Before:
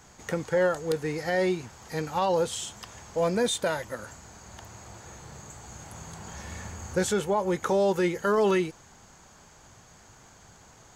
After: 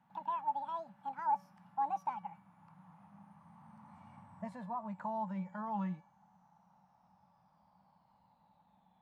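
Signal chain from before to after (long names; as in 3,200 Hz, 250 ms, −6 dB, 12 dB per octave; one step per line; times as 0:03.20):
gliding playback speed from 192% → 51%
pair of resonant band-passes 400 Hz, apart 2.2 octaves
tuned comb filter 570 Hz, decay 0.49 s, mix 70%
level +6.5 dB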